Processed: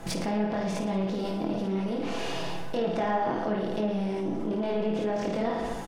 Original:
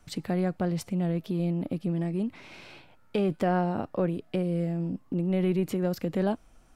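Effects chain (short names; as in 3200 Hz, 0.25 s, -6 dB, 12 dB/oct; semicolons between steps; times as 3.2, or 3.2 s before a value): per-bin compression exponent 0.6; chorus voices 6, 0.8 Hz, delay 26 ms, depth 2 ms; on a send: reverse bouncing-ball echo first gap 60 ms, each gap 1.1×, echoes 5; on the sum: treble ducked by the level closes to 2700 Hz, closed at -20.5 dBFS; comb 6.9 ms, depth 36%; in parallel at -1 dB: negative-ratio compressor -37 dBFS, ratio -1; on the sum: varispeed +15%; mismatched tape noise reduction decoder only; gain -3 dB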